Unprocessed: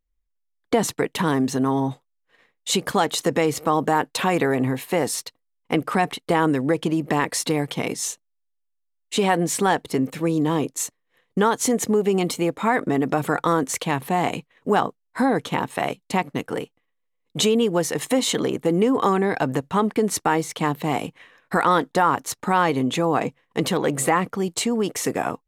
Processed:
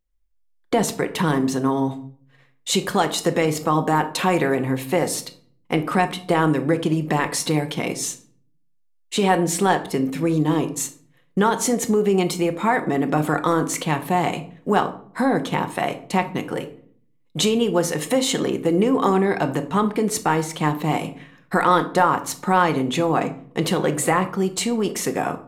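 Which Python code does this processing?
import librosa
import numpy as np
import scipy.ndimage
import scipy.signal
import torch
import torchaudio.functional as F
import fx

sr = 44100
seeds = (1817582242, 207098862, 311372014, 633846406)

y = fx.room_shoebox(x, sr, seeds[0], volume_m3=630.0, walls='furnished', distance_m=0.94)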